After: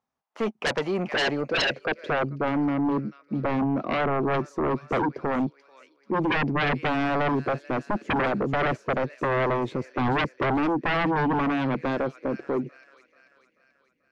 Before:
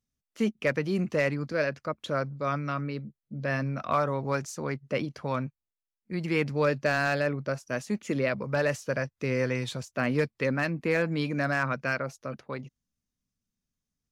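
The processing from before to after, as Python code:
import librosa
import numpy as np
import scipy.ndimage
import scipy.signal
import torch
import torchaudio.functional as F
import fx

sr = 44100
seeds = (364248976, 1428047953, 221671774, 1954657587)

y = fx.echo_wet_highpass(x, sr, ms=437, feedback_pct=51, hz=3200.0, wet_db=-4)
y = fx.filter_sweep_bandpass(y, sr, from_hz=870.0, to_hz=340.0, start_s=0.94, end_s=2.33, q=3.1)
y = fx.fold_sine(y, sr, drive_db=17, ceiling_db=-20.5)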